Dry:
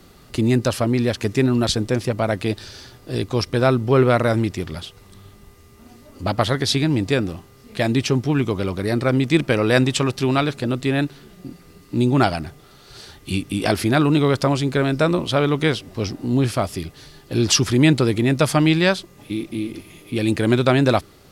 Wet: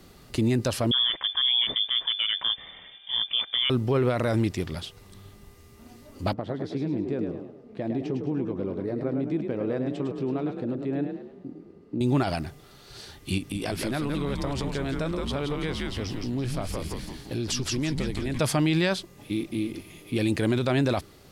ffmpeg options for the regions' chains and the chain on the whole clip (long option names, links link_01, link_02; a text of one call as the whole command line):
ffmpeg -i in.wav -filter_complex "[0:a]asettb=1/sr,asplit=3[link_01][link_02][link_03];[link_01]atrim=end=0.914[link_04];[link_02]atrim=start=0.91:end=3.7,asetpts=PTS-STARTPTS,afade=type=in:duration=0.004:curve=qsin,afade=type=out:start_time=2.786:duration=0.004:curve=qsin,bandreject=frequency=1000:width=5,lowpass=frequency=3100:width_type=q:width=0.5098,lowpass=frequency=3100:width_type=q:width=0.6013,lowpass=frequency=3100:width_type=q:width=0.9,lowpass=frequency=3100:width_type=q:width=2.563,afreqshift=-3600[link_05];[link_03]atrim=start=3.696[link_06];[link_04][link_05]acrossfade=duration=0.004:curve1=hsin:curve2=qsin[link_07];[link_07][link_06]acrossfade=duration=0.004:curve1=qsin:curve2=hsin,asettb=1/sr,asplit=3[link_08][link_09][link_10];[link_08]atrim=end=6.334[link_11];[link_09]atrim=start=6.33:end=12.01,asetpts=PTS-STARTPTS,afade=type=in:duration=0.004:curve=qsin,afade=type=out:start_time=5.676:duration=0.004:curve=qsin,acompressor=threshold=-21dB:ratio=3:attack=3.2:release=140:knee=1:detection=peak,bandpass=frequency=320:width_type=q:width=0.8,asplit=6[link_12][link_13][link_14][link_15][link_16][link_17];[link_13]adelay=105,afreqshift=36,volume=-6.5dB[link_18];[link_14]adelay=210,afreqshift=72,volume=-14dB[link_19];[link_15]adelay=315,afreqshift=108,volume=-21.6dB[link_20];[link_16]adelay=420,afreqshift=144,volume=-29.1dB[link_21];[link_17]adelay=525,afreqshift=180,volume=-36.6dB[link_22];[link_12][link_18][link_19][link_20][link_21][link_22]amix=inputs=6:normalize=0,atrim=end_sample=250488[link_23];[link_10]atrim=start=12.006[link_24];[link_11][link_23]acrossfade=duration=0.004:curve1=hsin:curve2=qsin[link_25];[link_25][link_24]acrossfade=duration=0.004:curve1=qsin:curve2=hsin,asettb=1/sr,asplit=3[link_26][link_27][link_28];[link_26]atrim=end=13.384[link_29];[link_27]atrim=start=13.38:end=18.4,asetpts=PTS-STARTPTS,afade=type=in:duration=0.004:curve=qsin,afade=type=out:start_time=5.016:duration=0.004:curve=qsin,asplit=7[link_30][link_31][link_32][link_33][link_34][link_35][link_36];[link_31]adelay=169,afreqshift=-110,volume=-4dB[link_37];[link_32]adelay=338,afreqshift=-220,volume=-11.1dB[link_38];[link_33]adelay=507,afreqshift=-330,volume=-18.3dB[link_39];[link_34]adelay=676,afreqshift=-440,volume=-25.4dB[link_40];[link_35]adelay=845,afreqshift=-550,volume=-32.5dB[link_41];[link_36]adelay=1014,afreqshift=-660,volume=-39.7dB[link_42];[link_30][link_37][link_38][link_39][link_40][link_41][link_42]amix=inputs=7:normalize=0,atrim=end_sample=221382,acompressor=threshold=-25dB:ratio=3:attack=3.2:release=140:knee=1:detection=peak[link_43];[link_28]atrim=start=18.396[link_44];[link_29][link_43]acrossfade=duration=0.004:curve1=hsin:curve2=qsin[link_45];[link_45][link_44]acrossfade=duration=0.004:curve1=qsin:curve2=hsin,equalizer=frequency=1300:width_type=o:width=0.38:gain=-2.5,alimiter=limit=-12.5dB:level=0:latency=1:release=28,volume=-3dB" out.wav